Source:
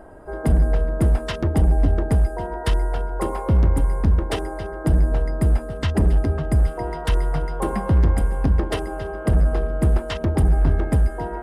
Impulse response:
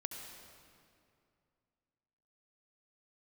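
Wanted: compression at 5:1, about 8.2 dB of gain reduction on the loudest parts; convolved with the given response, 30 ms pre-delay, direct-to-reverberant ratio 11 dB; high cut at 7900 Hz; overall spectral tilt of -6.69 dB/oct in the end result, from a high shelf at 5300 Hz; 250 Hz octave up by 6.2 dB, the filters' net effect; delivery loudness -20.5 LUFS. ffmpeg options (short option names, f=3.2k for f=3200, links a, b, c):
-filter_complex "[0:a]lowpass=7.9k,equalizer=f=250:t=o:g=8.5,highshelf=f=5.3k:g=-5,acompressor=threshold=-21dB:ratio=5,asplit=2[a][b];[1:a]atrim=start_sample=2205,adelay=30[c];[b][c]afir=irnorm=-1:irlink=0,volume=-10dB[d];[a][d]amix=inputs=2:normalize=0,volume=6dB"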